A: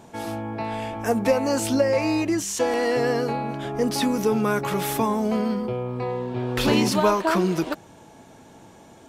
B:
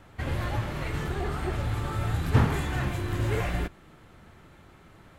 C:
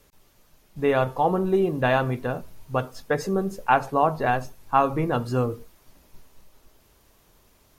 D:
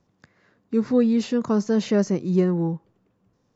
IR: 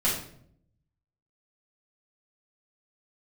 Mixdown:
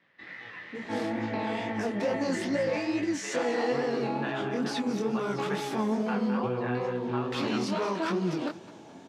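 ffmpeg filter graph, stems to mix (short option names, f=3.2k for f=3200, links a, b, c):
-filter_complex "[0:a]asoftclip=type=tanh:threshold=-16dB,highshelf=f=2.8k:g=11,adelay=750,volume=-3dB,asplit=2[a][b];[b]volume=-20dB[c];[1:a]aeval=exprs='val(0)*sin(2*PI*1900*n/s)':c=same,volume=-10dB,asplit=2[d][e];[e]volume=-6dB[f];[2:a]highpass=1.1k,adelay=2400,volume=0dB,asplit=2[g][h];[h]volume=-14dB[i];[3:a]volume=-8.5dB[j];[a][d]amix=inputs=2:normalize=0,lowshelf=f=450:g=11,alimiter=limit=-19dB:level=0:latency=1:release=31,volume=0dB[k];[g][j]amix=inputs=2:normalize=0,acompressor=threshold=-34dB:ratio=2.5,volume=0dB[l];[c][f][i]amix=inputs=3:normalize=0,aecho=0:1:208|416|624|832|1040|1248:1|0.44|0.194|0.0852|0.0375|0.0165[m];[k][l][m]amix=inputs=3:normalize=0,flanger=delay=16.5:depth=7.9:speed=2.3,highpass=190,lowpass=4.4k"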